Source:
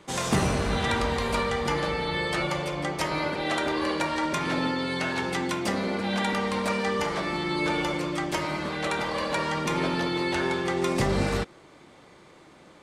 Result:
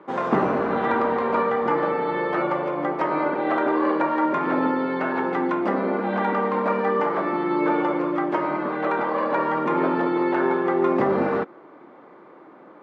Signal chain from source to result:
Chebyshev band-pass filter 270–1,300 Hz, order 2
level +7 dB

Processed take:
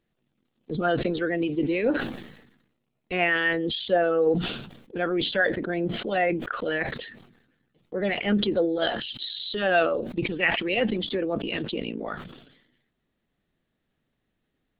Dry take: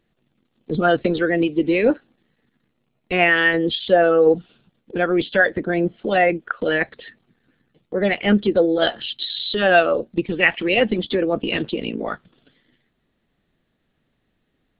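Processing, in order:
level that may fall only so fast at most 63 dB per second
level −7.5 dB

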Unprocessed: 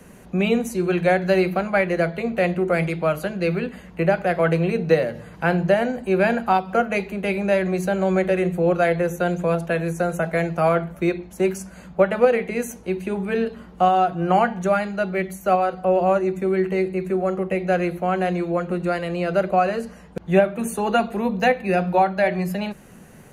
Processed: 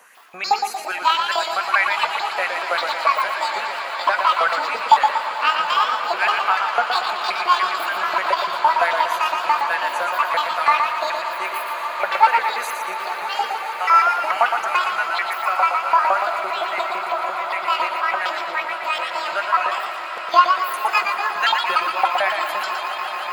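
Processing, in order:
pitch shifter gated in a rhythm +10 semitones, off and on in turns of 146 ms
auto-filter high-pass saw up 5.9 Hz 840–2,400 Hz
on a send: echo that builds up and dies away 146 ms, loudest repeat 8, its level −17 dB
on the sum: feedback echo with a swinging delay time 117 ms, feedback 48%, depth 85 cents, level −5.5 dB

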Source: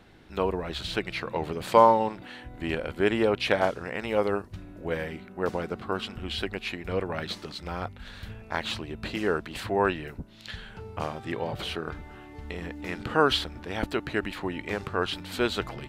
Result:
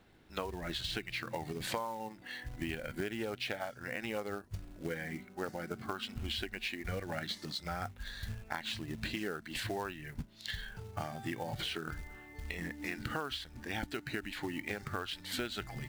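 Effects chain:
noise reduction from a noise print of the clip's start 11 dB
dynamic equaliser 450 Hz, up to −4 dB, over −35 dBFS, Q 0.92
downward compressor 16 to 1, threshold −36 dBFS, peak gain reduction 22.5 dB
floating-point word with a short mantissa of 2 bits
level +2 dB

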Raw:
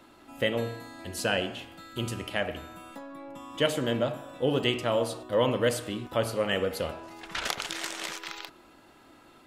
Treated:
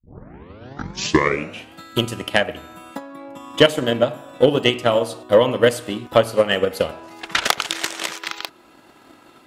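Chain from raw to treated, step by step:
turntable start at the beginning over 1.75 s
high-pass filter 100 Hz 6 dB per octave
transient designer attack +11 dB, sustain −2 dB
sine wavefolder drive 3 dB, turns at −1 dBFS
level −1 dB

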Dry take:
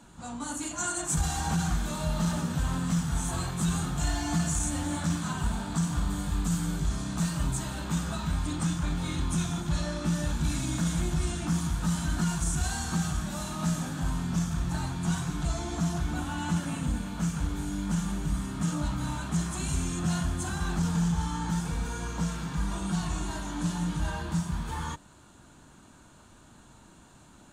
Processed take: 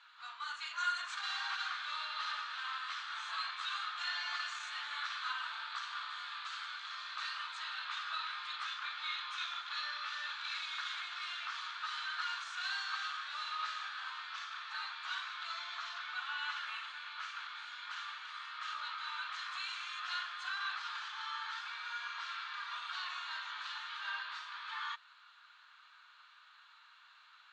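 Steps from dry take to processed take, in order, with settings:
elliptic band-pass filter 1,200–4,200 Hz, stop band 80 dB
level +2.5 dB

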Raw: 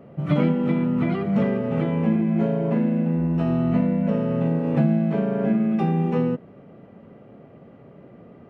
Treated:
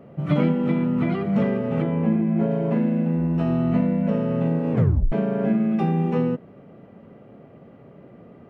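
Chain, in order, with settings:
0:01.82–0:02.51: high-shelf EQ 3,000 Hz −10 dB
0:04.72: tape stop 0.40 s

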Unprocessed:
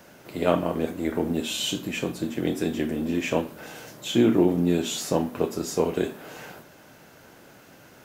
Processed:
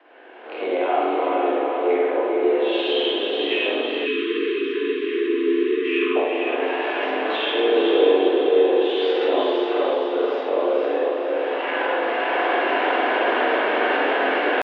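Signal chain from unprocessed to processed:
camcorder AGC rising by 37 dB per second
single-sideband voice off tune +110 Hz 200–3,200 Hz
in parallel at −2 dB: brickwall limiter −17.5 dBFS, peak gain reduction 9.5 dB
on the sum: tempo change 0.55×
on a send: feedback delay with all-pass diffusion 480 ms, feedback 55%, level −3 dB
on the sum: spring reverb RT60 1.2 s, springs 41/45 ms, chirp 40 ms, DRR −4.5 dB
time-frequency box erased 0:04.06–0:06.16, 460–1,000 Hz
level −8.5 dB

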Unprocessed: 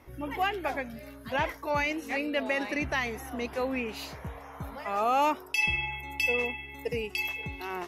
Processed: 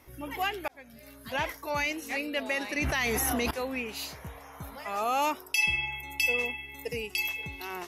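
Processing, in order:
high-shelf EQ 3,400 Hz +11.5 dB
0:00.68–0:01.23: fade in
0:02.77–0:03.51: envelope flattener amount 100%
level −3.5 dB

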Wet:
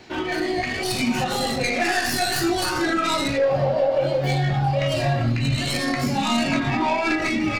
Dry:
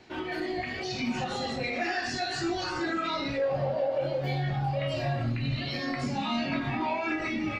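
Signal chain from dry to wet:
stylus tracing distortion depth 0.077 ms
high-shelf EQ 6,200 Hz +6 dB
level +8 dB

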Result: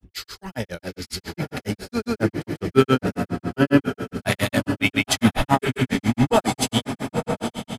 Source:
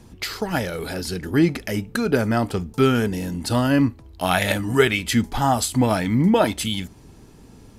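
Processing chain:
feedback delay with all-pass diffusion 917 ms, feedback 41%, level −4 dB
granular cloud 108 ms, grains 7.3 per second, pitch spread up and down by 0 semitones
multiband upward and downward expander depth 40%
level +2.5 dB

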